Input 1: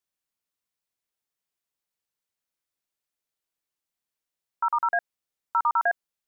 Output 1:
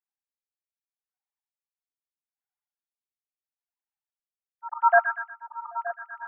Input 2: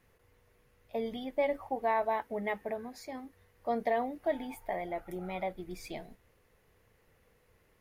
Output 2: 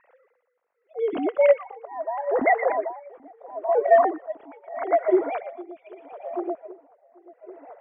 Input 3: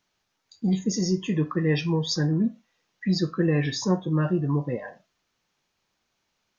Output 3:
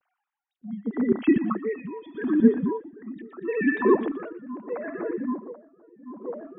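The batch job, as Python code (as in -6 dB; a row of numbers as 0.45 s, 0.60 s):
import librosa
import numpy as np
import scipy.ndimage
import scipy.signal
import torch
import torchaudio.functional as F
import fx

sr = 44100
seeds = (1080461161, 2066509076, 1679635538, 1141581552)

y = fx.sine_speech(x, sr)
y = fx.auto_swell(y, sr, attack_ms=131.0)
y = scipy.signal.sosfilt(scipy.signal.butter(2, 1600.0, 'lowpass', fs=sr, output='sos'), y)
y = fx.echo_split(y, sr, split_hz=1200.0, low_ms=784, high_ms=119, feedback_pct=52, wet_db=-9.5)
y = y * 10.0 ** (-21 * (0.5 - 0.5 * np.cos(2.0 * np.pi * 0.78 * np.arange(len(y)) / sr)) / 20.0)
y = y * 10.0 ** (-6 / 20.0) / np.max(np.abs(y))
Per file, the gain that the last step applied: +15.0 dB, +21.0 dB, +10.5 dB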